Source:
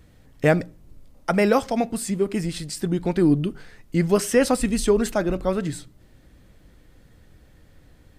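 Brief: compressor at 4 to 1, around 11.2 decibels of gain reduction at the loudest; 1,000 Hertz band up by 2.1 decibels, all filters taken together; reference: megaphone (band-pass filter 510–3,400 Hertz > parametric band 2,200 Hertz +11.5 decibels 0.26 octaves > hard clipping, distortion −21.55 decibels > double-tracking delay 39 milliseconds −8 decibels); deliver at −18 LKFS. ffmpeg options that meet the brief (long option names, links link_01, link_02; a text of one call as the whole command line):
ffmpeg -i in.wav -filter_complex "[0:a]equalizer=frequency=1000:width_type=o:gain=3.5,acompressor=threshold=-26dB:ratio=4,highpass=510,lowpass=3400,equalizer=frequency=2200:width_type=o:width=0.26:gain=11.5,asoftclip=type=hard:threshold=-19.5dB,asplit=2[link_01][link_02];[link_02]adelay=39,volume=-8dB[link_03];[link_01][link_03]amix=inputs=2:normalize=0,volume=16.5dB" out.wav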